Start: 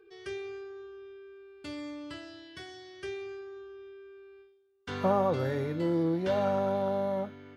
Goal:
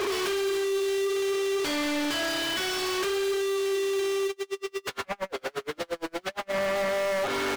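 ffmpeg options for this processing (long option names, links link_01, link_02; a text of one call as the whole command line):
ffmpeg -i in.wav -filter_complex "[0:a]aeval=exprs='val(0)+0.5*0.0133*sgn(val(0))':channel_layout=same,highpass=frequency=330:width=0.5412,highpass=frequency=330:width=1.3066,highshelf=frequency=3900:gain=9,aecho=1:1:7.3:0.56,acompressor=threshold=-36dB:ratio=8,aeval=exprs='0.0422*sin(PI/2*3.16*val(0)/0.0422)':channel_layout=same,flanger=delay=4.2:depth=6.5:regen=89:speed=0.57:shape=sinusoidal,asplit=2[link_01][link_02];[link_02]highpass=frequency=720:poles=1,volume=21dB,asoftclip=type=tanh:threshold=-27dB[link_03];[link_01][link_03]amix=inputs=2:normalize=0,lowpass=frequency=3100:poles=1,volume=-6dB,asplit=3[link_04][link_05][link_06];[link_04]afade=type=out:start_time=4.27:duration=0.02[link_07];[link_05]aeval=exprs='val(0)*pow(10,-39*(0.5-0.5*cos(2*PI*8.6*n/s))/20)':channel_layout=same,afade=type=in:start_time=4.27:duration=0.02,afade=type=out:start_time=6.52:duration=0.02[link_08];[link_06]afade=type=in:start_time=6.52:duration=0.02[link_09];[link_07][link_08][link_09]amix=inputs=3:normalize=0,volume=5.5dB" out.wav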